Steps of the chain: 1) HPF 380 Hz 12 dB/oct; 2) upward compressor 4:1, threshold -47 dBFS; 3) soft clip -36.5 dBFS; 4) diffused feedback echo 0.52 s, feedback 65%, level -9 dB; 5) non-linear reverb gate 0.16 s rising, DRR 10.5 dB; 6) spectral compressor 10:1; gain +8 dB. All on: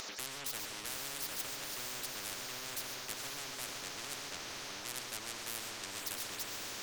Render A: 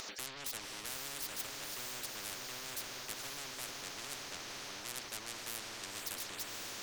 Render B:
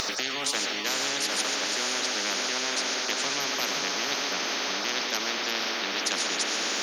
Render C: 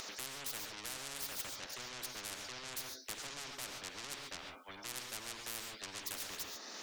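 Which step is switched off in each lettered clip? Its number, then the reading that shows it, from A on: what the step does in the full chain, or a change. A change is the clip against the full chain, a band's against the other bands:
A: 5, loudness change -1.5 LU; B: 3, distortion -8 dB; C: 4, loudness change -3.0 LU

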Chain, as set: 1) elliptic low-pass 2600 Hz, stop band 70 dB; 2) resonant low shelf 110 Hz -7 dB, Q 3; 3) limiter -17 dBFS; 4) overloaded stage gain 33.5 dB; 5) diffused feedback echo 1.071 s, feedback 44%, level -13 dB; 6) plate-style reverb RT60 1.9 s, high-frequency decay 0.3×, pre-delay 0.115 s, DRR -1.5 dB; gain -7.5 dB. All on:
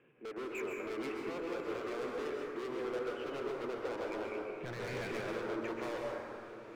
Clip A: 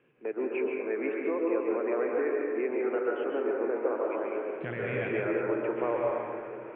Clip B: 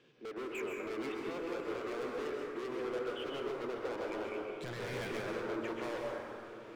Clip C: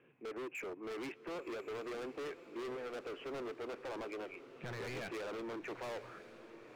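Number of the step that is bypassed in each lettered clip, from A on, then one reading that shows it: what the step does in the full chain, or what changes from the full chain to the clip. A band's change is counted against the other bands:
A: 4, distortion -4 dB; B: 1, 4 kHz band +2.0 dB; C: 6, crest factor change -5.0 dB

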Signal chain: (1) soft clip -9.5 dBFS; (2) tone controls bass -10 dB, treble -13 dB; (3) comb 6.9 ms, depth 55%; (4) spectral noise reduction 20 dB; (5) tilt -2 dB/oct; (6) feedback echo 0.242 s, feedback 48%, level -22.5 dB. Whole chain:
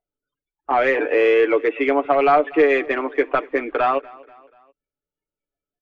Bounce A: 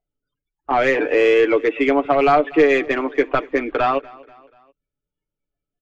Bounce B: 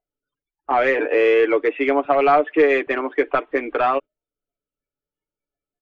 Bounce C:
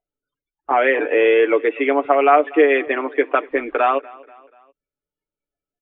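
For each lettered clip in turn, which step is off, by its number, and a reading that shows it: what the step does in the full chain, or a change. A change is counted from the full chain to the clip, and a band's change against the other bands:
2, 4 kHz band +3.0 dB; 6, echo-to-direct -21.5 dB to none; 1, distortion -17 dB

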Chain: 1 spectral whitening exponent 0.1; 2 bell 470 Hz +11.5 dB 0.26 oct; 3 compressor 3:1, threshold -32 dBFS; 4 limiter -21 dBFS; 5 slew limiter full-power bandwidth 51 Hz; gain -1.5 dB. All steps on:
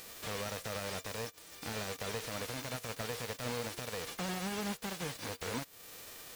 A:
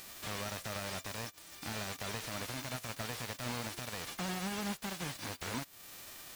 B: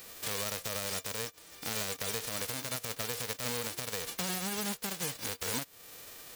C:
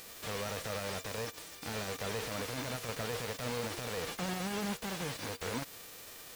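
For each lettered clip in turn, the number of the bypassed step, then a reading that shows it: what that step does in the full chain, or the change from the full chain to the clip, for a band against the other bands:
2, 500 Hz band -4.5 dB; 5, distortion -1 dB; 3, mean gain reduction 9.0 dB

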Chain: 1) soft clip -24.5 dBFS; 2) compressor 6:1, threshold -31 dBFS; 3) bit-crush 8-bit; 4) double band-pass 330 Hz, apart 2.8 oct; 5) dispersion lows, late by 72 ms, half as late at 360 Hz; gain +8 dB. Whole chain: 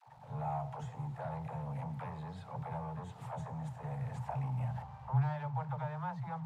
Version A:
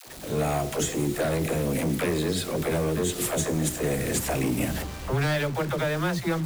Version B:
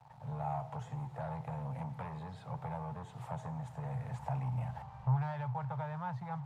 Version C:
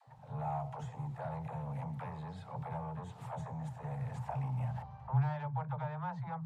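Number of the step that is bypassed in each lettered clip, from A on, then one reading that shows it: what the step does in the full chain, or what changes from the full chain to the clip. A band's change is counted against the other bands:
4, 1 kHz band -12.0 dB; 5, momentary loudness spread change +1 LU; 3, distortion -18 dB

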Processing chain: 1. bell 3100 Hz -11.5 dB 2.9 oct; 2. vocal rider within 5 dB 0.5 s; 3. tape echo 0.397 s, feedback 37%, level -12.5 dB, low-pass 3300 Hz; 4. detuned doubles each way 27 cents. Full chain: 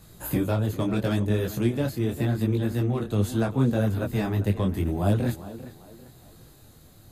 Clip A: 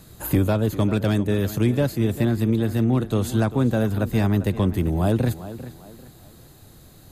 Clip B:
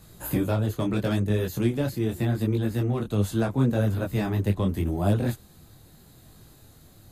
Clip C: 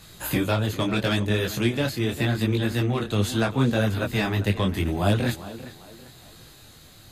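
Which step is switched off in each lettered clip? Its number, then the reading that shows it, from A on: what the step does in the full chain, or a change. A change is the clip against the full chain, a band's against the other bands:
4, momentary loudness spread change -2 LU; 3, momentary loudness spread change -1 LU; 1, 4 kHz band +8.0 dB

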